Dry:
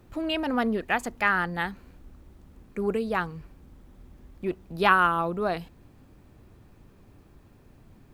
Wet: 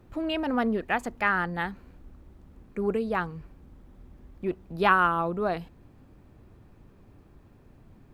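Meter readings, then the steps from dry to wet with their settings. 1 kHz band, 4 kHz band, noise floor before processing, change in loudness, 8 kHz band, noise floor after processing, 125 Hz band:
−1.0 dB, −3.5 dB, −56 dBFS, −1.0 dB, can't be measured, −56 dBFS, 0.0 dB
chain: high-shelf EQ 2,900 Hz −7 dB

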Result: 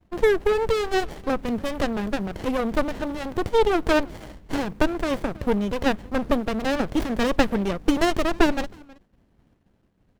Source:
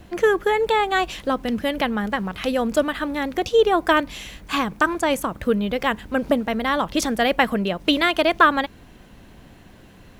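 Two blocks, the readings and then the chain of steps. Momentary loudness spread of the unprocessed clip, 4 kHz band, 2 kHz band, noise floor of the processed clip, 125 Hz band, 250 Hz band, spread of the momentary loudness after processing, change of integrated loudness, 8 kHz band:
8 LU, −6.5 dB, −6.5 dB, −65 dBFS, +1.5 dB, −0.5 dB, 8 LU, −3.0 dB, −4.5 dB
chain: downward expander −35 dBFS
far-end echo of a speakerphone 320 ms, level −24 dB
windowed peak hold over 33 samples

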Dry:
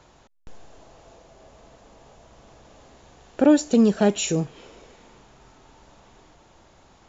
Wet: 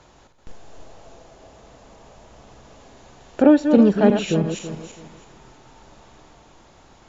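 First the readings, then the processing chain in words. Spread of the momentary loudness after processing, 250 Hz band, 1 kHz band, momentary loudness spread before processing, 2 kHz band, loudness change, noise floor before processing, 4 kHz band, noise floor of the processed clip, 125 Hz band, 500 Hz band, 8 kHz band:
18 LU, +3.5 dB, +3.5 dB, 9 LU, +3.0 dB, +3.0 dB, −56 dBFS, −1.0 dB, −52 dBFS, +3.5 dB, +3.5 dB, can't be measured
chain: feedback delay that plays each chunk backwards 164 ms, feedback 50%, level −6.5 dB
treble cut that deepens with the level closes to 2,700 Hz, closed at −17 dBFS
level +2.5 dB

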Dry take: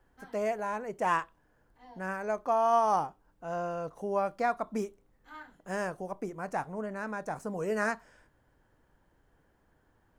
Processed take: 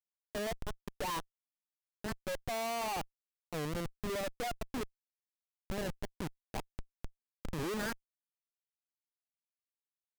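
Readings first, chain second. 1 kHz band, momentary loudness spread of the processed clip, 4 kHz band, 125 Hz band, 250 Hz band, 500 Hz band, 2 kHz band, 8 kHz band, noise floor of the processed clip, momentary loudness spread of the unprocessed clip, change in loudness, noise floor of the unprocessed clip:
−11.5 dB, 12 LU, +8.0 dB, +0.5 dB, −4.0 dB, −8.5 dB, −6.5 dB, +3.5 dB, below −85 dBFS, 14 LU, −7.5 dB, −69 dBFS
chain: spectral dynamics exaggerated over time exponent 2
comparator with hysteresis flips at −37.5 dBFS
wow of a warped record 45 rpm, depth 250 cents
level +2 dB

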